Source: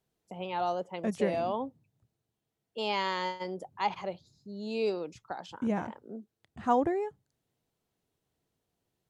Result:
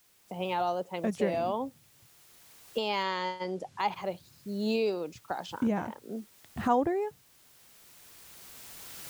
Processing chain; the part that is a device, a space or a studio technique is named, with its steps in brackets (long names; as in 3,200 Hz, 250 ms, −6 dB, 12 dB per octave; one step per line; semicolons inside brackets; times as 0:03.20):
cheap recorder with automatic gain (white noise bed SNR 31 dB; camcorder AGC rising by 10 dB per second)
0:03.03–0:03.80: low-pass filter 7,400 Hz 12 dB per octave